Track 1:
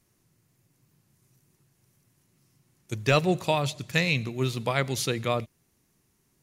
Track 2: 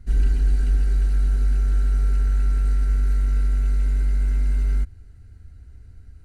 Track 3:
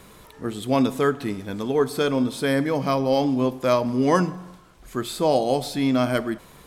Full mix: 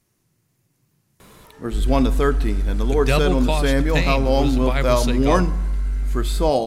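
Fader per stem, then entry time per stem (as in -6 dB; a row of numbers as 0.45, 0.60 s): +1.0, -2.0, +1.0 dB; 0.00, 1.65, 1.20 s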